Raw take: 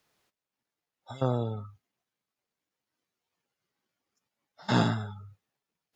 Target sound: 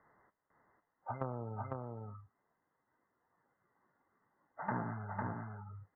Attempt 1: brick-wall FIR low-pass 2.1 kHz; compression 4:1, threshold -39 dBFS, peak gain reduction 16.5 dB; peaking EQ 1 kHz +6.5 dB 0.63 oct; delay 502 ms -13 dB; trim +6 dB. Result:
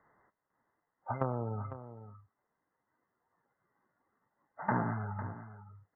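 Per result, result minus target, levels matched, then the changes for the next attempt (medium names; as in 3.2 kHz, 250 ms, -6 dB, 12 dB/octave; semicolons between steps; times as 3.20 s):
echo-to-direct -10 dB; compression: peak gain reduction -6.5 dB
change: delay 502 ms -3 dB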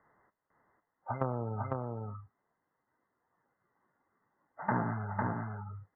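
compression: peak gain reduction -6.5 dB
change: compression 4:1, threshold -47.5 dBFS, peak gain reduction 22.5 dB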